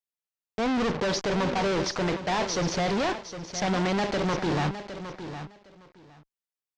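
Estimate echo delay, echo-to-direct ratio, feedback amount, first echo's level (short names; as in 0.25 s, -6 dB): 0.761 s, -11.0 dB, 17%, -11.0 dB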